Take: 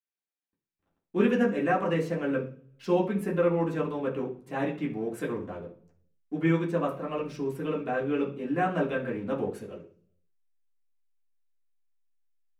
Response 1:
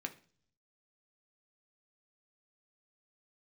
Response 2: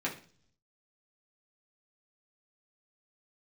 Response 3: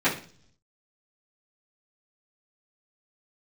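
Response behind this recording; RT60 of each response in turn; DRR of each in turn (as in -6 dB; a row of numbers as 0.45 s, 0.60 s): 2; 0.45 s, 0.45 s, 0.45 s; 4.5 dB, -5.5 dB, -14.5 dB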